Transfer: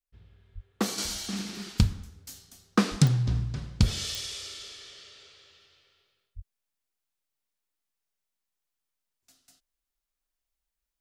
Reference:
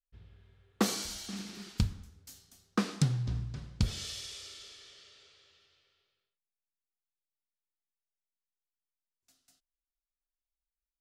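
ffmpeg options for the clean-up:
-filter_complex "[0:a]adeclick=t=4,asplit=3[a][b][c];[a]afade=t=out:st=0.54:d=0.02[d];[b]highpass=f=140:w=0.5412,highpass=f=140:w=1.3066,afade=t=in:st=0.54:d=0.02,afade=t=out:st=0.66:d=0.02[e];[c]afade=t=in:st=0.66:d=0.02[f];[d][e][f]amix=inputs=3:normalize=0,asplit=3[g][h][i];[g]afade=t=out:st=2.9:d=0.02[j];[h]highpass=f=140:w=0.5412,highpass=f=140:w=1.3066,afade=t=in:st=2.9:d=0.02,afade=t=out:st=3.02:d=0.02[k];[i]afade=t=in:st=3.02:d=0.02[l];[j][k][l]amix=inputs=3:normalize=0,asplit=3[m][n][o];[m]afade=t=out:st=6.35:d=0.02[p];[n]highpass=f=140:w=0.5412,highpass=f=140:w=1.3066,afade=t=in:st=6.35:d=0.02,afade=t=out:st=6.47:d=0.02[q];[o]afade=t=in:st=6.47:d=0.02[r];[p][q][r]amix=inputs=3:normalize=0,asetnsamples=n=441:p=0,asendcmd='0.98 volume volume -7dB',volume=0dB"

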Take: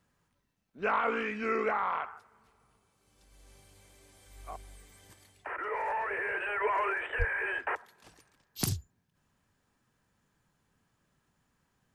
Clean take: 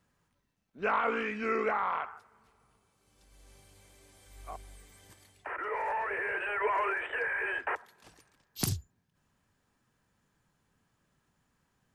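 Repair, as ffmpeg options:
-filter_complex "[0:a]asplit=3[a][b][c];[a]afade=t=out:st=7.18:d=0.02[d];[b]highpass=f=140:w=0.5412,highpass=f=140:w=1.3066,afade=t=in:st=7.18:d=0.02,afade=t=out:st=7.3:d=0.02[e];[c]afade=t=in:st=7.3:d=0.02[f];[d][e][f]amix=inputs=3:normalize=0"

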